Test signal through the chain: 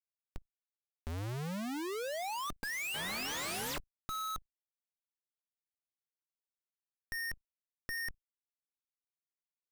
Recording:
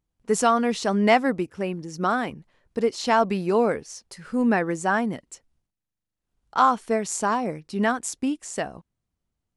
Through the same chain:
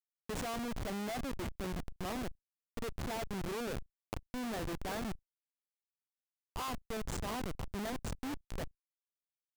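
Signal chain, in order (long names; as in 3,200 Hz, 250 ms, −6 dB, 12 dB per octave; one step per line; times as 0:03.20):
Butterworth band-reject 1,400 Hz, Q 5.1
echo through a band-pass that steps 331 ms, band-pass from 2,700 Hz, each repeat −0.7 octaves, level −7 dB
comparator with hysteresis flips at −24 dBFS
output level in coarse steps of 20 dB
level +2 dB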